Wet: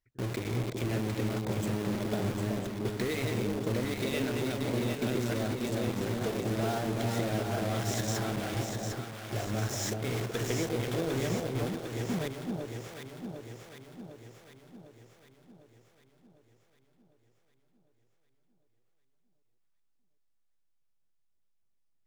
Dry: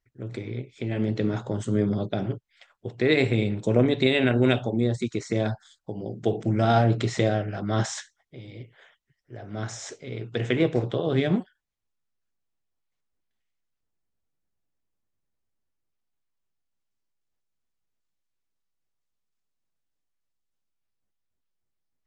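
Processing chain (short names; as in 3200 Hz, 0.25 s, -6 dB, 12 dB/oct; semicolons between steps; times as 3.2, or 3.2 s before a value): reverse delay 0.534 s, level -6.5 dB; 5.28–6 notches 60/120/180/240/300/360/420/480 Hz; compressor 16:1, threshold -33 dBFS, peak gain reduction 19.5 dB; in parallel at -4 dB: companded quantiser 2-bit; on the sum: echo with dull and thin repeats by turns 0.376 s, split 930 Hz, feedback 74%, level -3 dB; gain -4 dB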